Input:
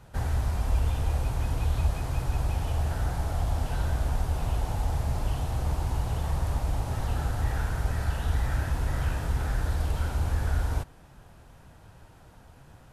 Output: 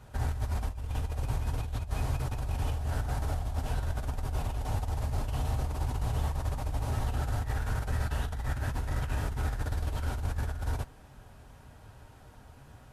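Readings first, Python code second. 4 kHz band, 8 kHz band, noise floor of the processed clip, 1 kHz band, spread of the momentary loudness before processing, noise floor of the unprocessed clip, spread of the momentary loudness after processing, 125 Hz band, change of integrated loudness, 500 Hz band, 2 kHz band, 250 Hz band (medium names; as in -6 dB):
-3.0 dB, -3.0 dB, -53 dBFS, -3.0 dB, 2 LU, -53 dBFS, 11 LU, -4.0 dB, -4.0 dB, -3.5 dB, -3.0 dB, -3.5 dB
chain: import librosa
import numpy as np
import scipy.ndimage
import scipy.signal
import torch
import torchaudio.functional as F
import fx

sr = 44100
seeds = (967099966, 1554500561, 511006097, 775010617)

y = fx.over_compress(x, sr, threshold_db=-28.0, ratio=-0.5)
y = fx.notch_comb(y, sr, f0_hz=170.0)
y = y * 10.0 ** (-1.5 / 20.0)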